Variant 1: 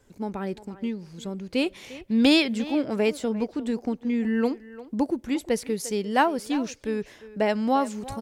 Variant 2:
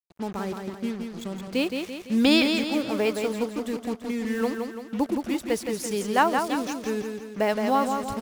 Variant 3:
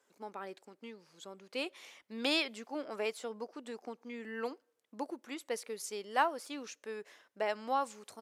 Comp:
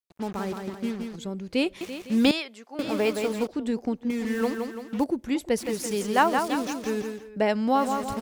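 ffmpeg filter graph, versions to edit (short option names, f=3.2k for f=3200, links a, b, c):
-filter_complex "[0:a]asplit=4[a][b][c][d];[1:a]asplit=6[e][f][g][h][i][j];[e]atrim=end=1.162[k];[a]atrim=start=1.158:end=1.812[l];[f]atrim=start=1.808:end=2.312[m];[2:a]atrim=start=2.308:end=2.792[n];[g]atrim=start=2.788:end=3.472[o];[b]atrim=start=3.468:end=4.102[p];[h]atrim=start=4.098:end=5.042[q];[c]atrim=start=5.038:end=5.582[r];[i]atrim=start=5.578:end=7.33[s];[d]atrim=start=7.09:end=7.91[t];[j]atrim=start=7.67[u];[k][l]acrossfade=d=0.004:c1=hsin:c2=hsin[v];[v][m]acrossfade=d=0.004:c1=hsin:c2=hsin[w];[w][n]acrossfade=d=0.004:c1=hsin:c2=hsin[x];[x][o]acrossfade=d=0.004:c1=hsin:c2=hsin[y];[y][p]acrossfade=d=0.004:c1=hsin:c2=hsin[z];[z][q]acrossfade=d=0.004:c1=hsin:c2=hsin[aa];[aa][r]acrossfade=d=0.004:c1=hsin:c2=hsin[ab];[ab][s]acrossfade=d=0.004:c1=hsin:c2=hsin[ac];[ac][t]acrossfade=d=0.24:c1=tri:c2=tri[ad];[ad][u]acrossfade=d=0.24:c1=tri:c2=tri"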